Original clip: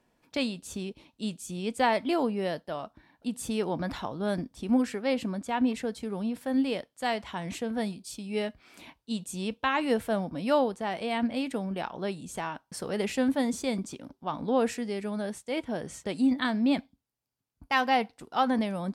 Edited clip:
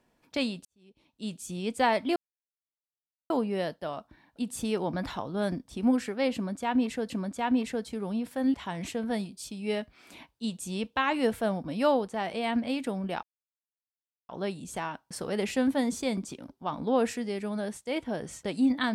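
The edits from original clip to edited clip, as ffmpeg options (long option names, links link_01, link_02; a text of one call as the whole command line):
ffmpeg -i in.wav -filter_complex "[0:a]asplit=6[link_01][link_02][link_03][link_04][link_05][link_06];[link_01]atrim=end=0.65,asetpts=PTS-STARTPTS,afade=type=out:start_time=0.646:duration=0.004:curve=hsin[link_07];[link_02]atrim=start=0.65:end=2.16,asetpts=PTS-STARTPTS,afade=type=in:duration=0.72:curve=qua,afade=type=out:start_time=1.506:duration=0.004:curve=hsin,apad=pad_dur=1.14[link_08];[link_03]atrim=start=2.16:end=5.962,asetpts=PTS-STARTPTS,afade=type=in:duration=0.004:curve=hsin[link_09];[link_04]atrim=start=5.198:end=6.642[link_10];[link_05]atrim=start=7.208:end=11.9,asetpts=PTS-STARTPTS,afade=type=out:start_time=4.688:duration=0.004:curve=hsin,apad=pad_dur=1.06[link_11];[link_06]atrim=start=11.9,asetpts=PTS-STARTPTS,afade=type=in:duration=0.004:curve=hsin[link_12];[link_07][link_08][link_09]concat=n=3:v=0:a=1[link_13];[link_13][link_10]acrossfade=duration=0.004:curve1=hsin:curve2=hsin[link_14];[link_11][link_12]concat=n=2:v=0:a=1[link_15];[link_14][link_15]acrossfade=duration=0.004:curve1=hsin:curve2=hsin" out.wav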